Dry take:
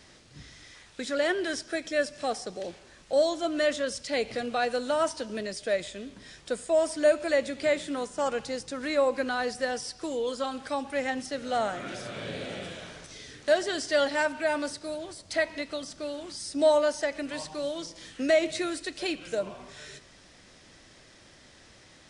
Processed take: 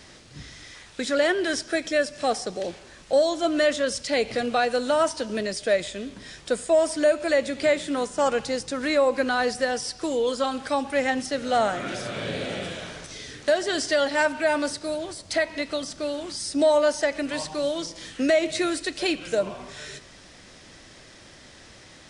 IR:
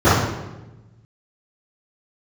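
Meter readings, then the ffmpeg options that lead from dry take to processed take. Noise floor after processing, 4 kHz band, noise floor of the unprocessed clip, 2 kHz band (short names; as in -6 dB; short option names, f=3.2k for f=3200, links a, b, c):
-49 dBFS, +5.0 dB, -55 dBFS, +4.5 dB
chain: -af "alimiter=limit=-18dB:level=0:latency=1:release=279,acontrast=85,volume=-1dB"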